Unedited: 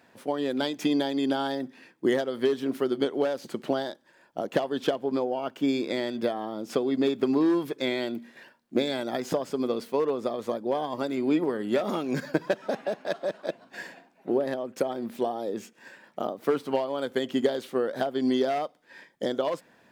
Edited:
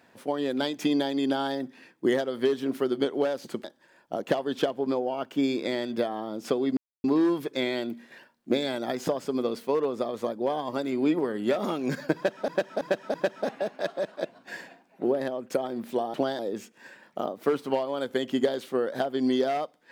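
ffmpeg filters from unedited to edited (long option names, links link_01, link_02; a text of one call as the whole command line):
ffmpeg -i in.wav -filter_complex "[0:a]asplit=9[link_01][link_02][link_03][link_04][link_05][link_06][link_07][link_08][link_09];[link_01]atrim=end=3.642[link_10];[link_02]atrim=start=3.888:end=7.02,asetpts=PTS-STARTPTS,afade=type=out:start_time=3.128:duration=0.004:curve=hsin[link_11];[link_03]atrim=start=7.02:end=7.29,asetpts=PTS-STARTPTS,volume=0[link_12];[link_04]atrim=start=7.29:end=12.732,asetpts=PTS-STARTPTS,afade=type=in:duration=0.004:curve=hsin[link_13];[link_05]atrim=start=12.398:end=12.732[link_14];[link_06]atrim=start=12.398:end=12.732[link_15];[link_07]atrim=start=12.398:end=15.402[link_16];[link_08]atrim=start=3.638:end=3.892[link_17];[link_09]atrim=start=15.398[link_18];[link_11][link_12][link_13]concat=n=3:v=0:a=1[link_19];[link_10][link_19]acrossfade=duration=0.004:curve1=hsin:curve2=hsin[link_20];[link_20][link_14]acrossfade=duration=0.004:curve1=hsin:curve2=hsin[link_21];[link_21][link_15]acrossfade=duration=0.004:curve1=hsin:curve2=hsin[link_22];[link_22][link_16]acrossfade=duration=0.004:curve1=hsin:curve2=hsin[link_23];[link_23][link_17]acrossfade=duration=0.004:curve1=hsin:curve2=hsin[link_24];[link_24][link_18]acrossfade=duration=0.004:curve1=hsin:curve2=hsin" out.wav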